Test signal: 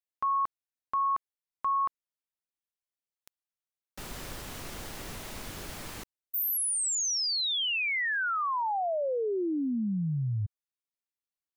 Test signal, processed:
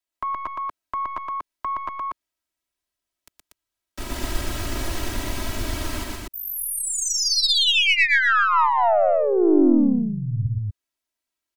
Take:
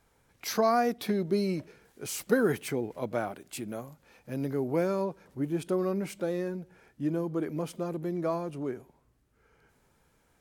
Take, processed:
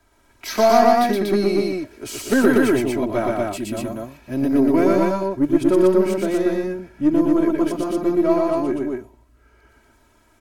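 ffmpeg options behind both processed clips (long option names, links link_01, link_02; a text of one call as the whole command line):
ffmpeg -i in.wav -filter_complex "[0:a]acrossover=split=4600[link_01][link_02];[link_02]acompressor=threshold=-36dB:ratio=4:attack=1:release=60[link_03];[link_01][link_03]amix=inputs=2:normalize=0,highshelf=frequency=9300:gain=-4,aecho=1:1:3.1:0.79,acrossover=split=250|480|5600[link_04][link_05][link_06][link_07];[link_04]dynaudnorm=framelen=450:gausssize=11:maxgain=5dB[link_08];[link_08][link_05][link_06][link_07]amix=inputs=4:normalize=0,aeval=exprs='0.266*(cos(1*acos(clip(val(0)/0.266,-1,1)))-cos(1*PI/2))+0.119*(cos(2*acos(clip(val(0)/0.266,-1,1)))-cos(2*PI/2))+0.0596*(cos(4*acos(clip(val(0)/0.266,-1,1)))-cos(4*PI/2))+0.0237*(cos(6*acos(clip(val(0)/0.266,-1,1)))-cos(6*PI/2))+0.00531*(cos(7*acos(clip(val(0)/0.266,-1,1)))-cos(7*PI/2))':channel_layout=same,aecho=1:1:119.5|239.1:0.794|0.794,volume=6.5dB" out.wav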